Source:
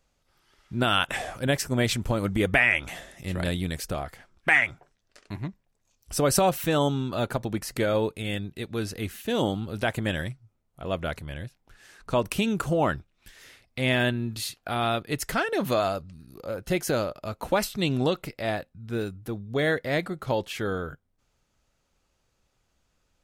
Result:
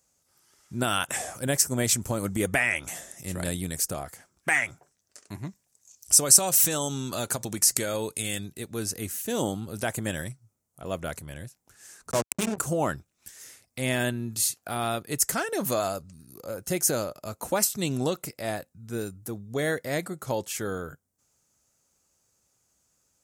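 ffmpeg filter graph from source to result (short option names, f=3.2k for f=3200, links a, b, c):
-filter_complex "[0:a]asettb=1/sr,asplit=3[a][b][c];[a]atrim=end=5.474[d];[b]atrim=start=5.47:end=8.53,asetpts=PTS-STARTPTS,afade=t=in:d=0.004:c=qsin,afade=t=out:st=3.056:d=0.004:c=qsin,equalizer=f=5.9k:w=0.31:g=9,acompressor=threshold=-24dB:ratio=2.5:attack=3.2:release=140:knee=1:detection=peak[e];[c]atrim=start=8.526[f];[d][e]acrossfade=d=0.004:c1=hsin:c2=qsin[g];[g][f]acrossfade=d=0.004:c1=qsin:c2=hsin,asettb=1/sr,asplit=3[h][i][j];[h]atrim=end=12.114[k];[i]atrim=start=12.11:end=12.58,asetpts=PTS-STARTPTS,afade=t=in:d=0.004:c=qsin,afade=t=out:st=0.466:d=0.004:c=qsin,bandreject=f=50:t=h:w=6,bandreject=f=100:t=h:w=6,bandreject=f=150:t=h:w=6,bandreject=f=200:t=h:w=6,bandreject=f=250:t=h:w=6,bandreject=f=300:t=h:w=6,bandreject=f=350:t=h:w=6,bandreject=f=400:t=h:w=6,bandreject=f=450:t=h:w=6,acrusher=bits=3:mix=0:aa=0.5,adynamicsmooth=sensitivity=3:basefreq=640[l];[j]atrim=start=12.576[m];[k][l]acrossfade=d=0.004:c1=hsin:c2=qsin[n];[n][m]acrossfade=d=0.004:c1=qsin:c2=hsin,highpass=80,highshelf=f=5k:t=q:w=1.5:g=12,volume=-2.5dB"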